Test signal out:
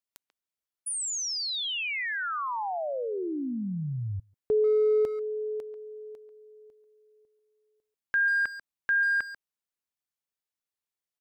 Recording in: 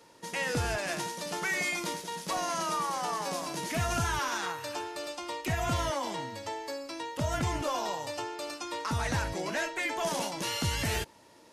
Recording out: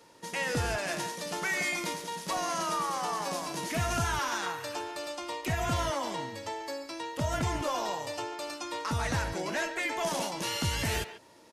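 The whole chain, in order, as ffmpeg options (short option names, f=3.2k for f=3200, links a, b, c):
-filter_complex "[0:a]asplit=2[a][b];[b]adelay=140,highpass=300,lowpass=3.4k,asoftclip=type=hard:threshold=-28dB,volume=-11dB[c];[a][c]amix=inputs=2:normalize=0"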